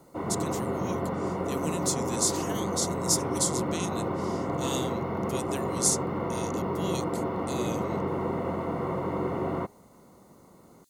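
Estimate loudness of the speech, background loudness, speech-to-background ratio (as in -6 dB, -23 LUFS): -32.0 LUFS, -31.0 LUFS, -1.0 dB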